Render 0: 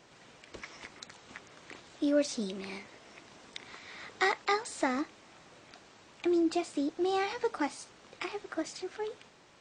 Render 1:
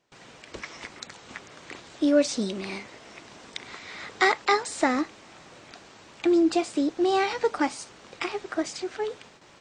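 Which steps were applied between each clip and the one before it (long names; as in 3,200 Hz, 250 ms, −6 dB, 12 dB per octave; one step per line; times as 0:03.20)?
noise gate with hold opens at −49 dBFS
level +7 dB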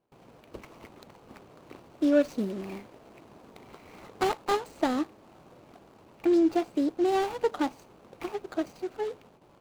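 running median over 25 samples
level −1.5 dB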